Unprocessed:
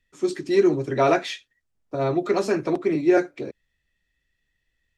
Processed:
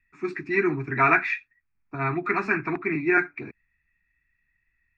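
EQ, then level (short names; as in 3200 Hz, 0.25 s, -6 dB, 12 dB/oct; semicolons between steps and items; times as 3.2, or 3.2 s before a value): dynamic EQ 1600 Hz, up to +6 dB, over -39 dBFS, Q 1.3; synth low-pass 2500 Hz, resonance Q 7.1; fixed phaser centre 1300 Hz, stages 4; 0.0 dB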